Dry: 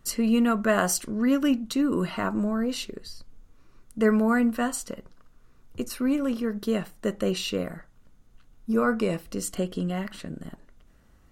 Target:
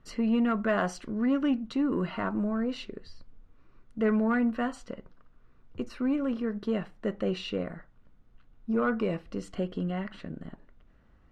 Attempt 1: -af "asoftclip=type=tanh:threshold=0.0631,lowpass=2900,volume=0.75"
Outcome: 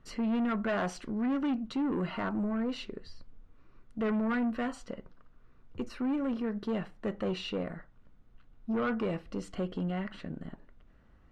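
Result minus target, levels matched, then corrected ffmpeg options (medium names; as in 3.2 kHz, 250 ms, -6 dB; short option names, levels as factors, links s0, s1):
saturation: distortion +10 dB
-af "asoftclip=type=tanh:threshold=0.178,lowpass=2900,volume=0.75"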